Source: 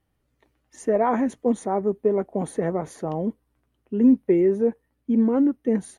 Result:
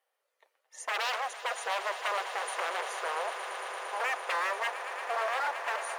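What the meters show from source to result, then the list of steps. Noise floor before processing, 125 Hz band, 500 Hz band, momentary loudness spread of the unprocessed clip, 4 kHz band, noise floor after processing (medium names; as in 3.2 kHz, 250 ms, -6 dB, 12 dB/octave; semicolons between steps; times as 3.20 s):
-73 dBFS, under -40 dB, -14.5 dB, 11 LU, no reading, -82 dBFS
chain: wavefolder -25 dBFS; elliptic high-pass 500 Hz, stop band 60 dB; echo with a slow build-up 114 ms, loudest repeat 8, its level -14 dB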